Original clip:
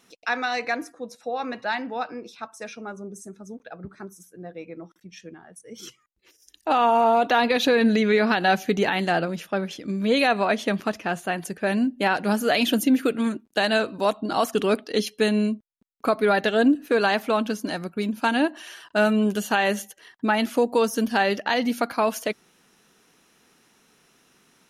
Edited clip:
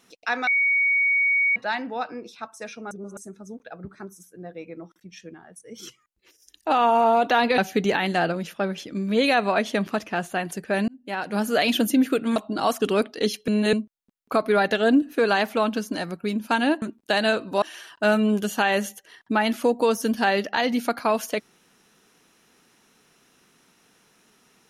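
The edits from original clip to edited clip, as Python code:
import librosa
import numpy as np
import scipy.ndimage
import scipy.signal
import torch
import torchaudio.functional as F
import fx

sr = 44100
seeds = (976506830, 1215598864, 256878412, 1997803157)

y = fx.edit(x, sr, fx.bleep(start_s=0.47, length_s=1.09, hz=2240.0, db=-17.5),
    fx.reverse_span(start_s=2.91, length_s=0.26),
    fx.cut(start_s=7.58, length_s=0.93),
    fx.fade_in_span(start_s=11.81, length_s=0.65),
    fx.move(start_s=13.29, length_s=0.8, to_s=18.55),
    fx.reverse_span(start_s=15.21, length_s=0.25), tone=tone)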